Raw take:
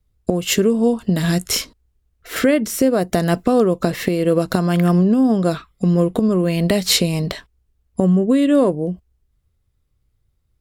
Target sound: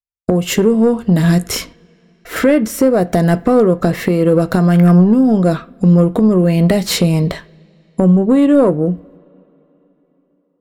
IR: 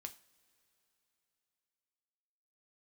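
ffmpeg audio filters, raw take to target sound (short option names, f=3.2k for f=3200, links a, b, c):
-filter_complex "[0:a]acontrast=80,agate=range=-47dB:threshold=-45dB:ratio=16:detection=peak,asplit=2[a][b];[1:a]atrim=start_sample=2205,lowpass=2.3k[c];[b][c]afir=irnorm=-1:irlink=0,volume=5dB[d];[a][d]amix=inputs=2:normalize=0,volume=-6.5dB"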